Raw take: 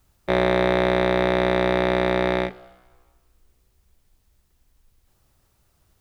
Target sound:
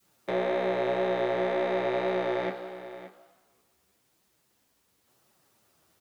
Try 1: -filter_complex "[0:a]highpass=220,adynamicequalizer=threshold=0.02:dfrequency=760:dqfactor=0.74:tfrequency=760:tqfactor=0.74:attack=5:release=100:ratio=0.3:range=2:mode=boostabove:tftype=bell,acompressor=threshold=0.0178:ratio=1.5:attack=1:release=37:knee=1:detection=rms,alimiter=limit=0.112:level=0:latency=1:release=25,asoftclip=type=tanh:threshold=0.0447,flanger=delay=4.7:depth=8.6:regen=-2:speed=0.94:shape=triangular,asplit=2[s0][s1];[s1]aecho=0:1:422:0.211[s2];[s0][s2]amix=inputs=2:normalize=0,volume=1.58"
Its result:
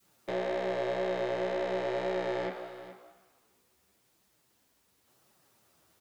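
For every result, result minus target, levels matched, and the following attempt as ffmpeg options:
compression: peak gain reduction +9 dB; saturation: distortion +13 dB; echo 151 ms early
-filter_complex "[0:a]highpass=220,adynamicequalizer=threshold=0.02:dfrequency=760:dqfactor=0.74:tfrequency=760:tqfactor=0.74:attack=5:release=100:ratio=0.3:range=2:mode=boostabove:tftype=bell,alimiter=limit=0.112:level=0:latency=1:release=25,asoftclip=type=tanh:threshold=0.0447,flanger=delay=4.7:depth=8.6:regen=-2:speed=0.94:shape=triangular,asplit=2[s0][s1];[s1]aecho=0:1:422:0.211[s2];[s0][s2]amix=inputs=2:normalize=0,volume=1.58"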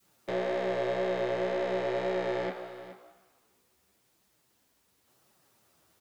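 saturation: distortion +12 dB; echo 151 ms early
-filter_complex "[0:a]highpass=220,adynamicequalizer=threshold=0.02:dfrequency=760:dqfactor=0.74:tfrequency=760:tqfactor=0.74:attack=5:release=100:ratio=0.3:range=2:mode=boostabove:tftype=bell,alimiter=limit=0.112:level=0:latency=1:release=25,asoftclip=type=tanh:threshold=0.119,flanger=delay=4.7:depth=8.6:regen=-2:speed=0.94:shape=triangular,asplit=2[s0][s1];[s1]aecho=0:1:422:0.211[s2];[s0][s2]amix=inputs=2:normalize=0,volume=1.58"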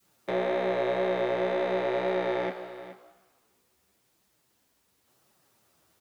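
echo 151 ms early
-filter_complex "[0:a]highpass=220,adynamicequalizer=threshold=0.02:dfrequency=760:dqfactor=0.74:tfrequency=760:tqfactor=0.74:attack=5:release=100:ratio=0.3:range=2:mode=boostabove:tftype=bell,alimiter=limit=0.112:level=0:latency=1:release=25,asoftclip=type=tanh:threshold=0.119,flanger=delay=4.7:depth=8.6:regen=-2:speed=0.94:shape=triangular,asplit=2[s0][s1];[s1]aecho=0:1:573:0.211[s2];[s0][s2]amix=inputs=2:normalize=0,volume=1.58"

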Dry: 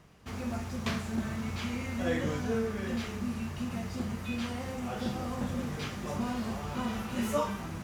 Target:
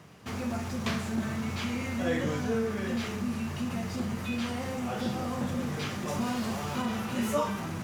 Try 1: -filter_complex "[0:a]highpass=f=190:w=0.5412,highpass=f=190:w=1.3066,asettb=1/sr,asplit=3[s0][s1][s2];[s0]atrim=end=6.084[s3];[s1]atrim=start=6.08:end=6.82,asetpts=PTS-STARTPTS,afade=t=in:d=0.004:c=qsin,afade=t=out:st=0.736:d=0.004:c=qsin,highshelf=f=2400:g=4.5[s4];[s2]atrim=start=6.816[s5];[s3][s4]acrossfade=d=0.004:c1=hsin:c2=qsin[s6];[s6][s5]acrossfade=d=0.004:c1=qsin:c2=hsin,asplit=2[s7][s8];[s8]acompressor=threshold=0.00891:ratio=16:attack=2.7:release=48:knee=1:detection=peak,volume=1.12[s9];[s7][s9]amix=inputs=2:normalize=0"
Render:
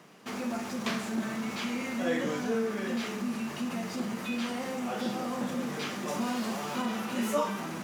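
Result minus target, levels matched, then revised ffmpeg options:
125 Hz band -7.5 dB
-filter_complex "[0:a]highpass=f=86:w=0.5412,highpass=f=86:w=1.3066,asettb=1/sr,asplit=3[s0][s1][s2];[s0]atrim=end=6.084[s3];[s1]atrim=start=6.08:end=6.82,asetpts=PTS-STARTPTS,afade=t=in:d=0.004:c=qsin,afade=t=out:st=0.736:d=0.004:c=qsin,highshelf=f=2400:g=4.5[s4];[s2]atrim=start=6.816[s5];[s3][s4]acrossfade=d=0.004:c1=hsin:c2=qsin[s6];[s6][s5]acrossfade=d=0.004:c1=qsin:c2=hsin,asplit=2[s7][s8];[s8]acompressor=threshold=0.00891:ratio=16:attack=2.7:release=48:knee=1:detection=peak,volume=1.12[s9];[s7][s9]amix=inputs=2:normalize=0"

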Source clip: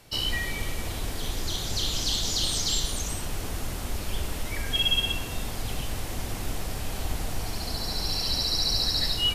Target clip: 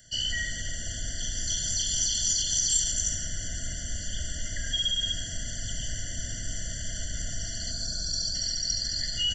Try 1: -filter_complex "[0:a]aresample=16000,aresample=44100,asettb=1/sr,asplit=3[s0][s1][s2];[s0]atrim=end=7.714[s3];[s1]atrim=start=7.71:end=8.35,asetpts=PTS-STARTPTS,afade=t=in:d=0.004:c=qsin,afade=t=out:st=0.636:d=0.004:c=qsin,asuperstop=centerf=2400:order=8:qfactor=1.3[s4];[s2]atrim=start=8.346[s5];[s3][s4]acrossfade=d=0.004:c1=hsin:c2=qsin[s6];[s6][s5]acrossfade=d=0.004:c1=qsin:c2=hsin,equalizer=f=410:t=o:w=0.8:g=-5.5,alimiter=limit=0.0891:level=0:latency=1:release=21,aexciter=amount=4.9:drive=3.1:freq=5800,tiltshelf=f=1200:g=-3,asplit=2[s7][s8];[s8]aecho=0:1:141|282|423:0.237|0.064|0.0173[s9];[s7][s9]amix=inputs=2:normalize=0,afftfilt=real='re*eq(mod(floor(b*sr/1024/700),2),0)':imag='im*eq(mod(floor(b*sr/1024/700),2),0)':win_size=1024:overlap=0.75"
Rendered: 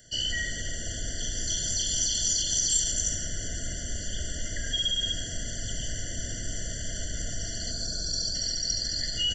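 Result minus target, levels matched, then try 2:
500 Hz band +5.5 dB
-filter_complex "[0:a]aresample=16000,aresample=44100,asettb=1/sr,asplit=3[s0][s1][s2];[s0]atrim=end=7.714[s3];[s1]atrim=start=7.71:end=8.35,asetpts=PTS-STARTPTS,afade=t=in:d=0.004:c=qsin,afade=t=out:st=0.636:d=0.004:c=qsin,asuperstop=centerf=2400:order=8:qfactor=1.3[s4];[s2]atrim=start=8.346[s5];[s3][s4]acrossfade=d=0.004:c1=hsin:c2=qsin[s6];[s6][s5]acrossfade=d=0.004:c1=qsin:c2=hsin,equalizer=f=410:t=o:w=0.8:g=-17,alimiter=limit=0.0891:level=0:latency=1:release=21,aexciter=amount=4.9:drive=3.1:freq=5800,tiltshelf=f=1200:g=-3,asplit=2[s7][s8];[s8]aecho=0:1:141|282|423:0.237|0.064|0.0173[s9];[s7][s9]amix=inputs=2:normalize=0,afftfilt=real='re*eq(mod(floor(b*sr/1024/700),2),0)':imag='im*eq(mod(floor(b*sr/1024/700),2),0)':win_size=1024:overlap=0.75"

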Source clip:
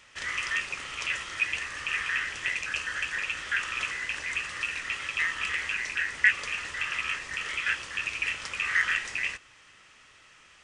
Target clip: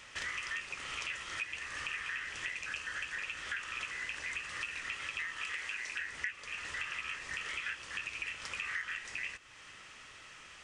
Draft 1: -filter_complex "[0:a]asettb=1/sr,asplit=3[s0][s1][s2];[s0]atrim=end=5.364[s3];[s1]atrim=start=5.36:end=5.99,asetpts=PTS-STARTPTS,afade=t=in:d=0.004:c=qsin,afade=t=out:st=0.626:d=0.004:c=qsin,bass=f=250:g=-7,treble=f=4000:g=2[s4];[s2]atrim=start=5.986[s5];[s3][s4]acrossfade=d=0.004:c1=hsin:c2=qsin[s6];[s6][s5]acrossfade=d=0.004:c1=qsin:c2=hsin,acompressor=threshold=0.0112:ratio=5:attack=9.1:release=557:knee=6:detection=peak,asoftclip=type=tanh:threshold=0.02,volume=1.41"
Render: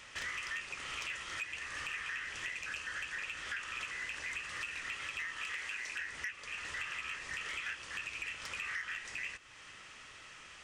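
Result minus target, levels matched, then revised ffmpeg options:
saturation: distortion +14 dB
-filter_complex "[0:a]asettb=1/sr,asplit=3[s0][s1][s2];[s0]atrim=end=5.364[s3];[s1]atrim=start=5.36:end=5.99,asetpts=PTS-STARTPTS,afade=t=in:d=0.004:c=qsin,afade=t=out:st=0.626:d=0.004:c=qsin,bass=f=250:g=-7,treble=f=4000:g=2[s4];[s2]atrim=start=5.986[s5];[s3][s4]acrossfade=d=0.004:c1=hsin:c2=qsin[s6];[s6][s5]acrossfade=d=0.004:c1=qsin:c2=hsin,acompressor=threshold=0.0112:ratio=5:attack=9.1:release=557:knee=6:detection=peak,asoftclip=type=tanh:threshold=0.0631,volume=1.41"

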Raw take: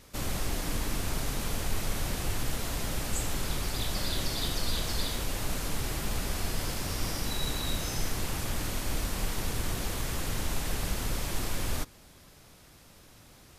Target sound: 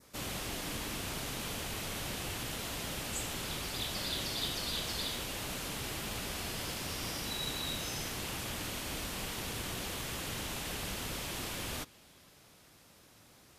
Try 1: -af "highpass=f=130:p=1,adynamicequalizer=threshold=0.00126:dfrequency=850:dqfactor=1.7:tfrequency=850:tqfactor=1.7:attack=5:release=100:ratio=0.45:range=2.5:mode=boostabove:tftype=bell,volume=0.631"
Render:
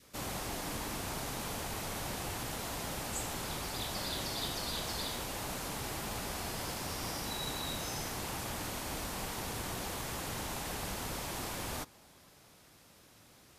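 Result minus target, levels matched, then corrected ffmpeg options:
1 kHz band +4.0 dB
-af "highpass=f=130:p=1,adynamicequalizer=threshold=0.00126:dfrequency=3000:dqfactor=1.7:tfrequency=3000:tqfactor=1.7:attack=5:release=100:ratio=0.45:range=2.5:mode=boostabove:tftype=bell,volume=0.631"

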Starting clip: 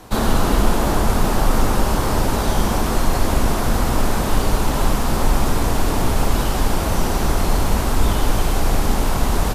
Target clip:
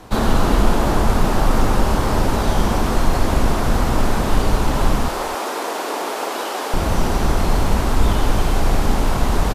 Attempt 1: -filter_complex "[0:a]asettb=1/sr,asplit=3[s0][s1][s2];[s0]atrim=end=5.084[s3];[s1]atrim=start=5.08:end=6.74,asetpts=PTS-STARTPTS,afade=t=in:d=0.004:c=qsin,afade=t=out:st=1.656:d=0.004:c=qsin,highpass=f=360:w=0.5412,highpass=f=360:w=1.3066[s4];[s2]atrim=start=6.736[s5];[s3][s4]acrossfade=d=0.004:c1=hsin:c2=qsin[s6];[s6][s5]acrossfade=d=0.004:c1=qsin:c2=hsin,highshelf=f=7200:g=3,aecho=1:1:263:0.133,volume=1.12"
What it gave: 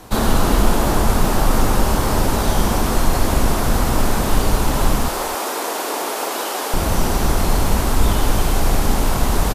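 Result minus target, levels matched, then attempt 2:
8 kHz band +5.5 dB
-filter_complex "[0:a]asettb=1/sr,asplit=3[s0][s1][s2];[s0]atrim=end=5.084[s3];[s1]atrim=start=5.08:end=6.74,asetpts=PTS-STARTPTS,afade=t=in:d=0.004:c=qsin,afade=t=out:st=1.656:d=0.004:c=qsin,highpass=f=360:w=0.5412,highpass=f=360:w=1.3066[s4];[s2]atrim=start=6.736[s5];[s3][s4]acrossfade=d=0.004:c1=hsin:c2=qsin[s6];[s6][s5]acrossfade=d=0.004:c1=qsin:c2=hsin,highshelf=f=7200:g=-8,aecho=1:1:263:0.133,volume=1.12"

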